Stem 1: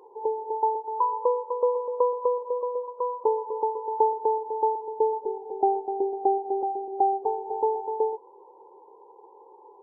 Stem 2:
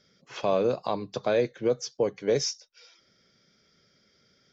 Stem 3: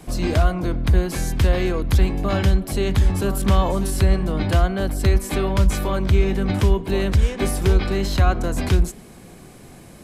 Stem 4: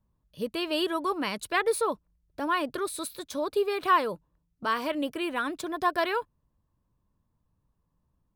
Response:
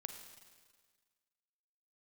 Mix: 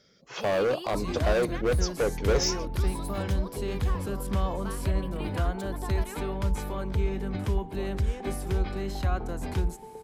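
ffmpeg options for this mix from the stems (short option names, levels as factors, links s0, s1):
-filter_complex "[0:a]acompressor=threshold=0.0447:ratio=6,adelay=1950,volume=0.2[s0];[1:a]equalizer=f=570:t=o:w=1.5:g=3.5,volume=14.1,asoftclip=hard,volume=0.0708,volume=1.12[s1];[2:a]adynamicequalizer=threshold=0.01:dfrequency=2100:dqfactor=0.7:tfrequency=2100:tqfactor=0.7:attack=5:release=100:ratio=0.375:range=2:mode=cutabove:tftype=highshelf,adelay=850,volume=0.299[s2];[3:a]acrossover=split=160[s3][s4];[s4]acompressor=threshold=0.0355:ratio=6[s5];[s3][s5]amix=inputs=2:normalize=0,volume=0.355[s6];[s0][s1][s2][s6]amix=inputs=4:normalize=0,highshelf=f=8200:g=3.5"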